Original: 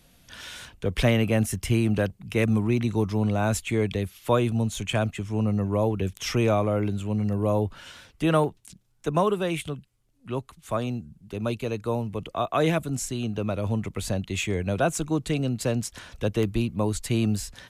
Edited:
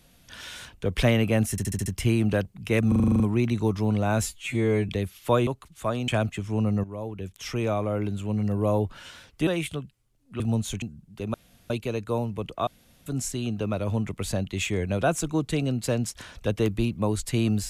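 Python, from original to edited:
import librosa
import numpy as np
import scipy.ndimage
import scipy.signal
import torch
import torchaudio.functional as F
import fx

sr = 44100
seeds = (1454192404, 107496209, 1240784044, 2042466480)

y = fx.edit(x, sr, fx.stutter(start_s=1.51, slice_s=0.07, count=6),
    fx.stutter(start_s=2.53, slice_s=0.04, count=9),
    fx.stretch_span(start_s=3.56, length_s=0.33, factor=2.0),
    fx.swap(start_s=4.47, length_s=0.42, other_s=10.34, other_length_s=0.61),
    fx.fade_in_from(start_s=5.65, length_s=1.65, floor_db=-13.5),
    fx.cut(start_s=8.28, length_s=1.13),
    fx.insert_room_tone(at_s=11.47, length_s=0.36),
    fx.room_tone_fill(start_s=12.44, length_s=0.39), tone=tone)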